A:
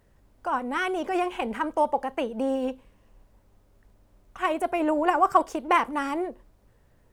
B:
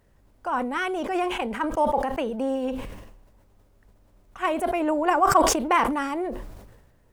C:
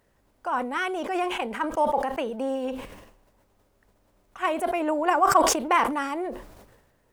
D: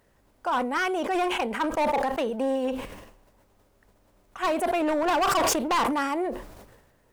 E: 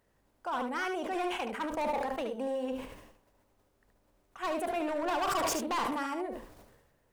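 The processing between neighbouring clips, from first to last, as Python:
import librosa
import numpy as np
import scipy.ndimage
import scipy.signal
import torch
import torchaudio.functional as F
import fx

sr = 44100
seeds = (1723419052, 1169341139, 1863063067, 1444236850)

y1 = fx.sustainer(x, sr, db_per_s=47.0)
y2 = fx.low_shelf(y1, sr, hz=180.0, db=-10.5)
y3 = np.clip(y2, -10.0 ** (-23.0 / 20.0), 10.0 ** (-23.0 / 20.0))
y3 = y3 * librosa.db_to_amplitude(2.5)
y4 = y3 + 10.0 ** (-7.0 / 20.0) * np.pad(y3, (int(73 * sr / 1000.0), 0))[:len(y3)]
y4 = y4 * librosa.db_to_amplitude(-8.5)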